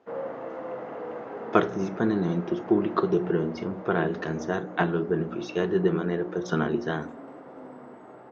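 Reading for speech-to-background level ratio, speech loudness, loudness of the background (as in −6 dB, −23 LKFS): 12.5 dB, −27.5 LKFS, −40.0 LKFS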